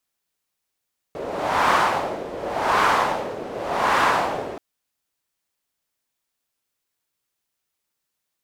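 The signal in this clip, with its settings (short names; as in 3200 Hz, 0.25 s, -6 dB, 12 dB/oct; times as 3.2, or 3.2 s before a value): wind-like swept noise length 3.43 s, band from 480 Hz, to 1100 Hz, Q 2, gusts 3, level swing 14 dB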